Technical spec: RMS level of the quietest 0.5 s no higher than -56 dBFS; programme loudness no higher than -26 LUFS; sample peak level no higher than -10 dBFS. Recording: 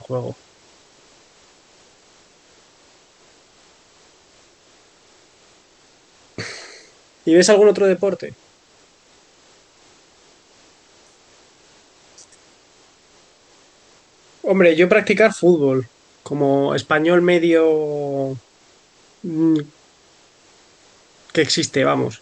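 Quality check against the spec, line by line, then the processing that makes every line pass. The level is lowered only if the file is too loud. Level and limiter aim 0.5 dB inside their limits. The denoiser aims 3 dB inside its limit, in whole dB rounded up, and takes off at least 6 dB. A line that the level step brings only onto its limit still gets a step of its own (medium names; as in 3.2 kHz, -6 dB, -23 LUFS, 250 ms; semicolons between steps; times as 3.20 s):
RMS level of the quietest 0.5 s -54 dBFS: fail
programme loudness -17.0 LUFS: fail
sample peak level -2.5 dBFS: fail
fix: trim -9.5 dB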